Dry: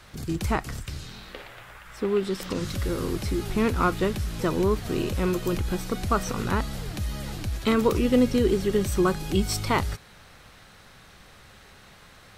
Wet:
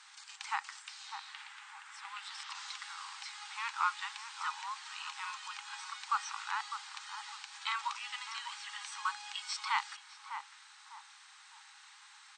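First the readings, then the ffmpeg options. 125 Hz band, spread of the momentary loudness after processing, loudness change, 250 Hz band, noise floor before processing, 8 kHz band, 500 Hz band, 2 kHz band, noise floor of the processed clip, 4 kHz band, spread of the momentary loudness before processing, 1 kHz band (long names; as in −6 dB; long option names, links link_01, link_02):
below −40 dB, 18 LU, −13.5 dB, below −40 dB, −51 dBFS, −8.5 dB, below −40 dB, −5.0 dB, −58 dBFS, −5.0 dB, 14 LU, −6.0 dB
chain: -filter_complex "[0:a]acrossover=split=4900[link_01][link_02];[link_02]acompressor=threshold=-53dB:ratio=4:attack=1:release=60[link_03];[link_01][link_03]amix=inputs=2:normalize=0,afftfilt=real='re*between(b*sr/4096,780,9000)':imag='im*between(b*sr/4096,780,9000)':win_size=4096:overlap=0.75,aemphasis=mode=production:type=cd,asplit=2[link_04][link_05];[link_05]adelay=603,lowpass=frequency=1000:poles=1,volume=-6dB,asplit=2[link_06][link_07];[link_07]adelay=603,lowpass=frequency=1000:poles=1,volume=0.43,asplit=2[link_08][link_09];[link_09]adelay=603,lowpass=frequency=1000:poles=1,volume=0.43,asplit=2[link_10][link_11];[link_11]adelay=603,lowpass=frequency=1000:poles=1,volume=0.43,asplit=2[link_12][link_13];[link_13]adelay=603,lowpass=frequency=1000:poles=1,volume=0.43[link_14];[link_06][link_08][link_10][link_12][link_14]amix=inputs=5:normalize=0[link_15];[link_04][link_15]amix=inputs=2:normalize=0,volume=-6dB"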